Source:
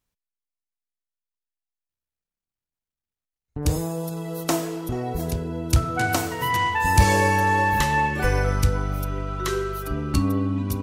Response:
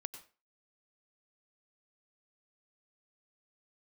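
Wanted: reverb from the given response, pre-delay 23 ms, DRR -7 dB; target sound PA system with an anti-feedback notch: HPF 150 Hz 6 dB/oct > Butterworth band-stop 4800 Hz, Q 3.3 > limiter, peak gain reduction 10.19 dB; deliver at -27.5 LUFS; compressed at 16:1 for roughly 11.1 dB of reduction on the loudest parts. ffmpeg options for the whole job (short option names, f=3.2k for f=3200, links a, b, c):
-filter_complex "[0:a]acompressor=threshold=-21dB:ratio=16,asplit=2[a][b];[1:a]atrim=start_sample=2205,adelay=23[c];[b][c]afir=irnorm=-1:irlink=0,volume=9.5dB[d];[a][d]amix=inputs=2:normalize=0,highpass=f=150:p=1,asuperstop=centerf=4800:order=8:qfactor=3.3,volume=-4dB,alimiter=limit=-18dB:level=0:latency=1"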